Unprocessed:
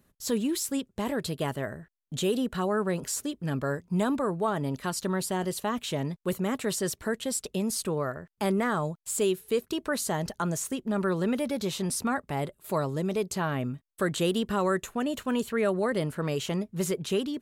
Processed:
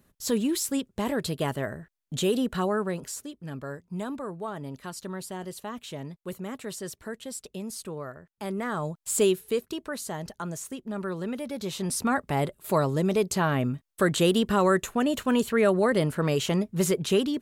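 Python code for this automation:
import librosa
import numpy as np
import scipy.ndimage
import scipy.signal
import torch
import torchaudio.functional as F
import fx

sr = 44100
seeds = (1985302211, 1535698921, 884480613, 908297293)

y = fx.gain(x, sr, db=fx.line((2.63, 2.0), (3.29, -7.0), (8.44, -7.0), (9.21, 4.5), (9.9, -5.0), (11.44, -5.0), (12.22, 4.5)))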